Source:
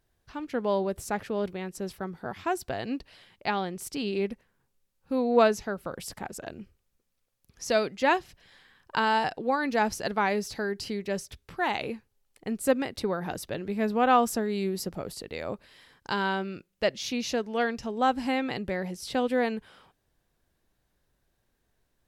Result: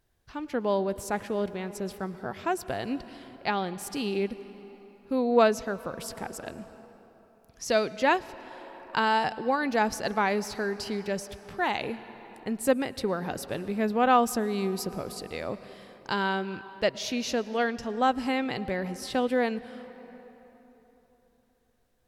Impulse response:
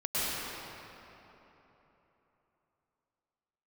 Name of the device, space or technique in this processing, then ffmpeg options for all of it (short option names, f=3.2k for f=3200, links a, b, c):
ducked reverb: -filter_complex "[0:a]asplit=3[a][b][c];[1:a]atrim=start_sample=2205[d];[b][d]afir=irnorm=-1:irlink=0[e];[c]apad=whole_len=973541[f];[e][f]sidechaincompress=threshold=-28dB:ratio=3:attack=39:release=1010,volume=-22dB[g];[a][g]amix=inputs=2:normalize=0"